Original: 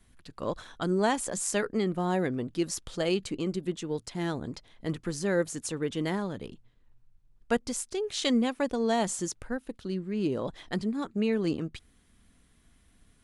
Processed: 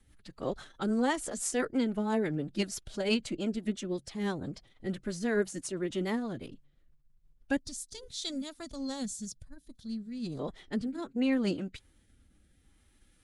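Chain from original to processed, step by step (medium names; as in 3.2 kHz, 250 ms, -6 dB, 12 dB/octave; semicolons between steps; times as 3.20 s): rotary cabinet horn 6 Hz, later 0.65 Hz, at 7.39 s; time-frequency box 7.60–10.40 s, 230–3300 Hz -13 dB; formant-preserving pitch shift +3 st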